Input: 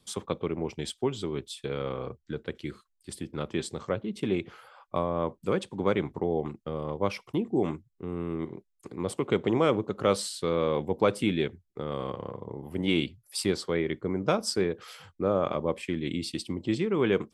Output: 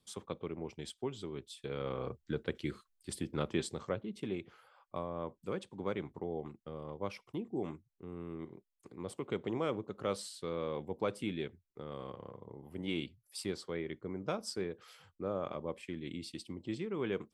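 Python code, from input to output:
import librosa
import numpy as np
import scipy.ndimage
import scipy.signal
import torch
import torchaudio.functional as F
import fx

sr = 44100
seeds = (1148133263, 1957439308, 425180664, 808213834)

y = fx.gain(x, sr, db=fx.line((1.48, -10.0), (2.2, -1.5), (3.4, -1.5), (4.38, -11.0)))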